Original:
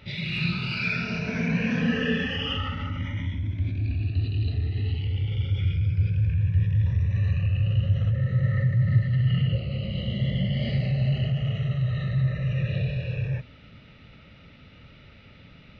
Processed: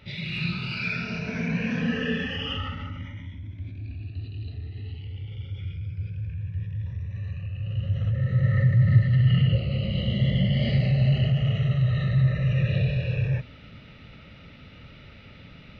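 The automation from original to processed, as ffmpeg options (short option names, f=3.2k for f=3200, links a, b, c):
-af "volume=10dB,afade=t=out:st=2.65:d=0.56:silence=0.446684,afade=t=in:st=7.57:d=1.11:silence=0.251189"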